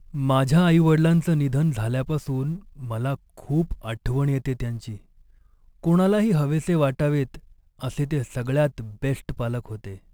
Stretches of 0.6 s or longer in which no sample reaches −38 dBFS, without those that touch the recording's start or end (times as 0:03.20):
0:04.97–0:05.84